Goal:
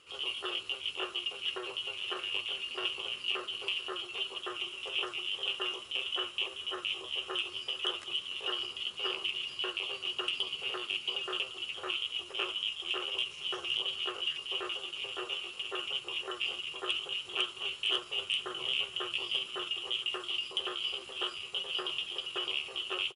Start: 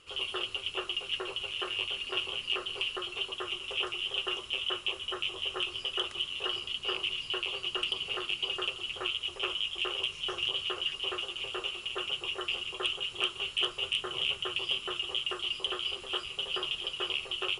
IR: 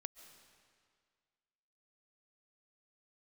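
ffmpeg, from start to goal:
-filter_complex "[0:a]highpass=frequency=180:poles=1,atempo=0.76,asplit=2[link_01][link_02];[link_02]aecho=0:1:1016:0.1[link_03];[link_01][link_03]amix=inputs=2:normalize=0,volume=-1.5dB"

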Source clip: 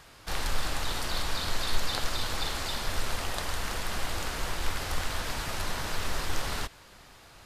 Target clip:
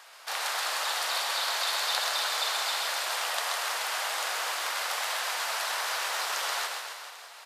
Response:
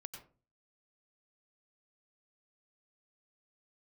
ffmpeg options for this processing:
-filter_complex "[0:a]highpass=frequency=620:width=0.5412,highpass=frequency=620:width=1.3066,aecho=1:1:130|273|430.3|603.3|793.7:0.631|0.398|0.251|0.158|0.1,asplit=2[link_01][link_02];[1:a]atrim=start_sample=2205,lowshelf=frequency=340:gain=10[link_03];[link_02][link_03]afir=irnorm=-1:irlink=0,volume=-10dB[link_04];[link_01][link_04]amix=inputs=2:normalize=0,volume=1.5dB"

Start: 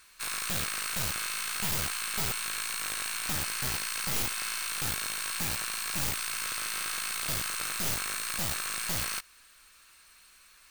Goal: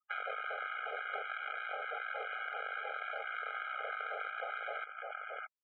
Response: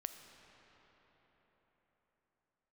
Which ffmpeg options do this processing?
-filter_complex "[0:a]highpass=frequency=700:poles=1,asplit=2[link_01][link_02];[link_02]asoftclip=type=tanh:threshold=-33dB,volume=-8dB[link_03];[link_01][link_03]amix=inputs=2:normalize=0,lowpass=1200,afwtdn=0.00562,aecho=1:1:1178:0.237,atempo=1.9,acontrast=28,afftfilt=real='re*gte(hypot(re,im),0.000891)':imag='im*gte(hypot(re,im),0.000891)':win_size=1024:overlap=0.75,acompressor=threshold=-46dB:ratio=6,afftfilt=real='re*eq(mod(floor(b*sr/1024/410),2),1)':imag='im*eq(mod(floor(b*sr/1024/410),2),1)':win_size=1024:overlap=0.75,volume=12dB"

